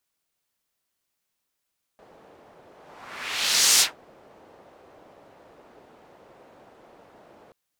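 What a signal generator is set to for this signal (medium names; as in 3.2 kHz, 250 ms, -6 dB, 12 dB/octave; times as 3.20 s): whoosh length 5.53 s, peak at 1.81 s, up 1.14 s, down 0.16 s, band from 580 Hz, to 6.4 kHz, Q 1.3, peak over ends 35.5 dB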